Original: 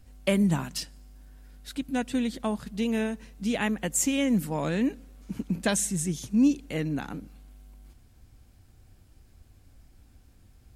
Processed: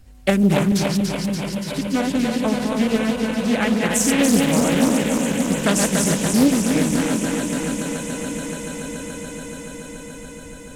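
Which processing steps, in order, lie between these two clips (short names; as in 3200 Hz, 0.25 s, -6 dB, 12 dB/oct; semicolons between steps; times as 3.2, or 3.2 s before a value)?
regenerating reverse delay 0.144 s, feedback 84%, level -3.5 dB; swelling echo 0.143 s, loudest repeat 8, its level -16.5 dB; Doppler distortion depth 0.46 ms; gain +5.5 dB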